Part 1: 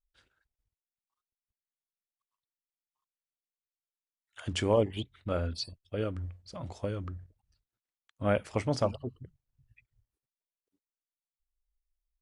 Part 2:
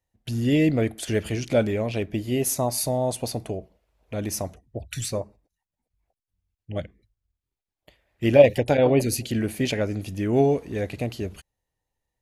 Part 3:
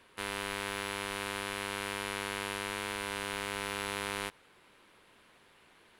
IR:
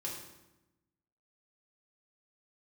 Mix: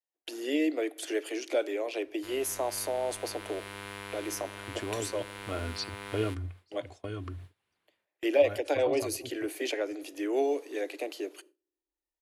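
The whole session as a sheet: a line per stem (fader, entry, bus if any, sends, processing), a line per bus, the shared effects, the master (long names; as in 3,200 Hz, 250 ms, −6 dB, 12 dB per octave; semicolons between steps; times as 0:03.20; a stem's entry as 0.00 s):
+2.0 dB, 0.20 s, no send, high-pass filter 190 Hz 6 dB per octave; comb filter 2.8 ms, depth 75%; automatic ducking −13 dB, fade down 0.25 s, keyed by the second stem
−6.0 dB, 0.00 s, send −20.5 dB, Butterworth high-pass 290 Hz 96 dB per octave
−15.5 dB, 2.05 s, send −17.5 dB, automatic gain control gain up to 5.5 dB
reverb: on, RT60 1.0 s, pre-delay 3 ms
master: noise gate with hold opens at −41 dBFS; parametric band 100 Hz +7.5 dB 1.1 octaves; multiband upward and downward compressor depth 40%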